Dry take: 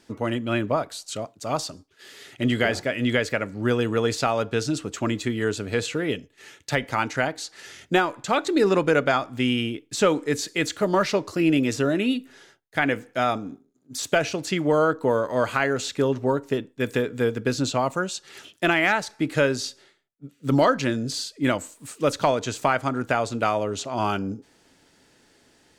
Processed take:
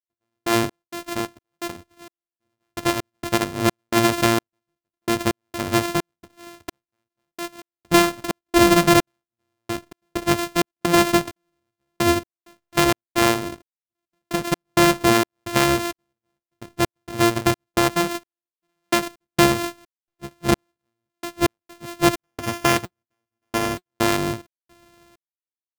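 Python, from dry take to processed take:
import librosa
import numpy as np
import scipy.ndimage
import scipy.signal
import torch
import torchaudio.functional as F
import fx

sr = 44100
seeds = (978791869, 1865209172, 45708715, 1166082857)

y = np.r_[np.sort(x[:len(x) // 128 * 128].reshape(-1, 128), axis=1).ravel(), x[len(x) // 128 * 128:]]
y = fx.step_gate(y, sr, bpm=65, pattern='..x.xx.xx.', floor_db=-60.0, edge_ms=4.5)
y = fx.notch_comb(y, sr, f0_hz=180.0, at=(22.2, 23.9))
y = y * librosa.db_to_amplitude(5.0)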